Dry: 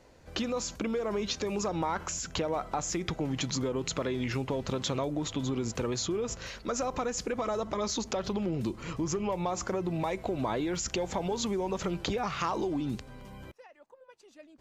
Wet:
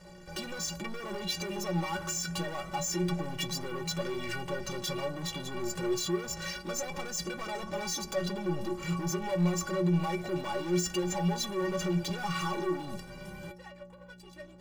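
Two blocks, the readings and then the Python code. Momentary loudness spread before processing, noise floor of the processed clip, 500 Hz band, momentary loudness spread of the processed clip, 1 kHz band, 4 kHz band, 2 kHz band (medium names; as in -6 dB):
3 LU, -51 dBFS, -2.5 dB, 13 LU, -2.5 dB, +0.5 dB, +2.5 dB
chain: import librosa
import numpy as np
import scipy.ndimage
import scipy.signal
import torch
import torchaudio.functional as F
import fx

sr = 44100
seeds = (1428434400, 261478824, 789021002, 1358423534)

y = fx.add_hum(x, sr, base_hz=60, snr_db=22)
y = fx.leveller(y, sr, passes=5)
y = fx.stiff_resonator(y, sr, f0_hz=170.0, decay_s=0.32, stiffness=0.03)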